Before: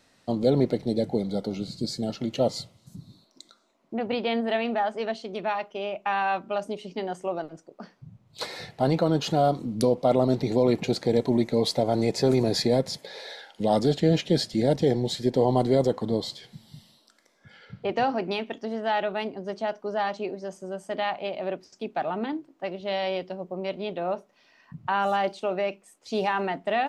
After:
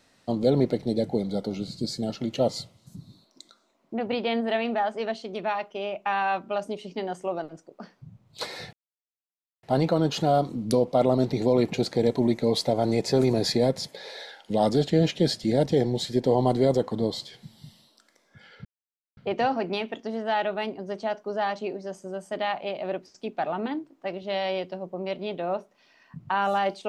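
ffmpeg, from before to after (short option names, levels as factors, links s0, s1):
-filter_complex "[0:a]asplit=3[s0][s1][s2];[s0]atrim=end=8.73,asetpts=PTS-STARTPTS,afade=t=out:st=8.726:d=0.004:c=hsin,apad=pad_dur=0.9[s3];[s1]atrim=start=8.73:end=17.75,asetpts=PTS-STARTPTS,afade=t=in:d=0.004:c=hsin,afade=t=out:st=9.016:d=0.004:c=hsin,apad=pad_dur=0.52[s4];[s2]atrim=start=17.75,asetpts=PTS-STARTPTS,afade=t=in:d=0.004:c=hsin[s5];[s3][s4][s5]concat=n=3:v=0:a=1"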